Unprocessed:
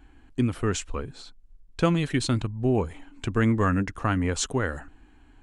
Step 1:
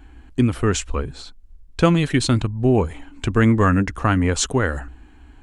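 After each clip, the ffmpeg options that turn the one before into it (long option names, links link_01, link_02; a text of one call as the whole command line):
ffmpeg -i in.wav -af "equalizer=frequency=62:width_type=o:width=0.21:gain=14,volume=6.5dB" out.wav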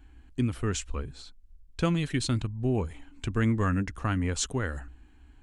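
ffmpeg -i in.wav -af "equalizer=frequency=690:width_type=o:width=2.8:gain=-5,volume=-8dB" out.wav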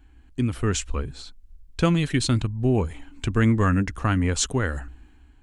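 ffmpeg -i in.wav -af "dynaudnorm=framelen=100:gausssize=9:maxgain=6dB" out.wav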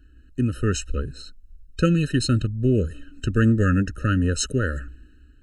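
ffmpeg -i in.wav -af "afftfilt=real='re*eq(mod(floor(b*sr/1024/620),2),0)':imag='im*eq(mod(floor(b*sr/1024/620),2),0)':win_size=1024:overlap=0.75,volume=1.5dB" out.wav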